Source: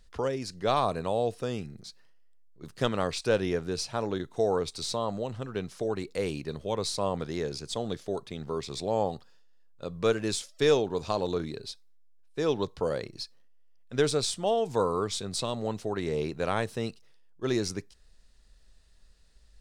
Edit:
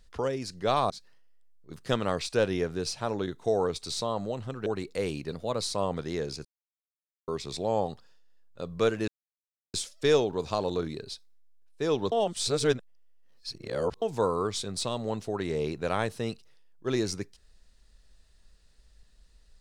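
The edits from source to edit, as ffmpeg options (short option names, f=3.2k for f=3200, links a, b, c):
-filter_complex "[0:a]asplit=10[a][b][c][d][e][f][g][h][i][j];[a]atrim=end=0.902[k];[b]atrim=start=1.818:end=5.582[l];[c]atrim=start=5.858:end=6.524[m];[d]atrim=start=6.52:end=6.84,asetpts=PTS-STARTPTS,asetrate=48951,aresample=44100[n];[e]atrim=start=6.836:end=7.68,asetpts=PTS-STARTPTS,afade=t=out:st=0.84:d=0.004:c=hsin[o];[f]atrim=start=7.68:end=8.51,asetpts=PTS-STARTPTS,volume=0[p];[g]atrim=start=8.51:end=10.31,asetpts=PTS-STARTPTS,afade=t=in:d=0.004:c=hsin,afade=t=out:st=1.796:d=0.004:c=hsin,apad=pad_dur=0.66[q];[h]atrim=start=10.31:end=12.692,asetpts=PTS-STARTPTS,afade=t=in:d=0.004:c=hsin[r];[i]atrim=start=12.688:end=14.592,asetpts=PTS-STARTPTS,areverse[s];[j]atrim=start=14.588[t];[k][l]acrossfade=d=0.004:c1=hsin:c2=hsin[u];[u][m]acrossfade=d=0.004:c1=hsin:c2=hsin[v];[v][n]acrossfade=d=0.004:c1=hsin:c2=hsin[w];[o][p][q][r]concat=n=4:v=0:a=1[x];[w][x]acrossfade=d=0.004:c1=hsin:c2=hsin[y];[y][s]acrossfade=d=0.004:c1=hsin:c2=hsin[z];[z][t]acrossfade=d=0.004:c1=hsin:c2=hsin"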